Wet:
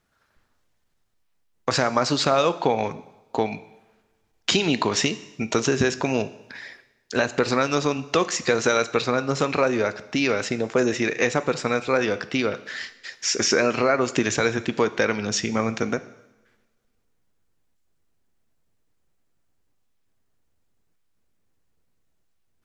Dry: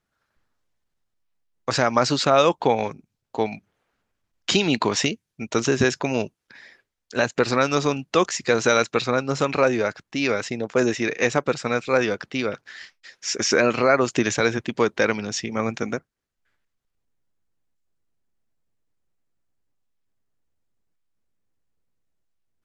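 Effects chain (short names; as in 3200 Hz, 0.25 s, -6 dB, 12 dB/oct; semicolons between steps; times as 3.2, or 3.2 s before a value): compressor 2:1, threshold -31 dBFS, peak gain reduction 10.5 dB; two-slope reverb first 0.91 s, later 2.4 s, from -24 dB, DRR 12.5 dB; gain +7 dB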